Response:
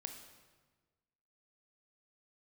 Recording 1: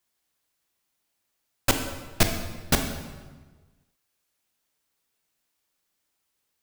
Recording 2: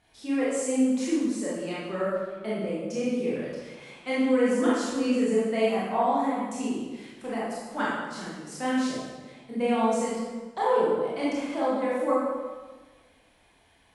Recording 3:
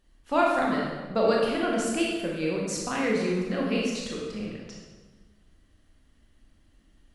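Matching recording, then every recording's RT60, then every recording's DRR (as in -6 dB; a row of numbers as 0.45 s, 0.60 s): 1; 1.4 s, 1.4 s, 1.4 s; 5.0 dB, -8.0 dB, -3.0 dB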